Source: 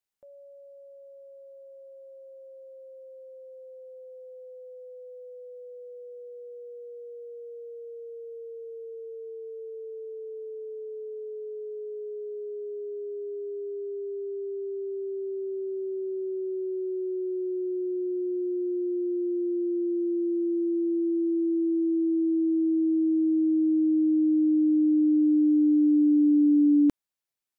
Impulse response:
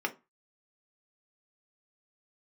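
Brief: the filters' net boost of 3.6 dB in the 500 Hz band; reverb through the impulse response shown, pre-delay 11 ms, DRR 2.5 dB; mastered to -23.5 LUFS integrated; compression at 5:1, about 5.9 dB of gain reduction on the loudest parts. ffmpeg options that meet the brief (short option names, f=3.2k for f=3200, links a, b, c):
-filter_complex "[0:a]equalizer=f=500:t=o:g=6,acompressor=threshold=-24dB:ratio=5,asplit=2[a][b];[1:a]atrim=start_sample=2205,adelay=11[c];[b][c]afir=irnorm=-1:irlink=0,volume=-9dB[d];[a][d]amix=inputs=2:normalize=0,volume=1.5dB"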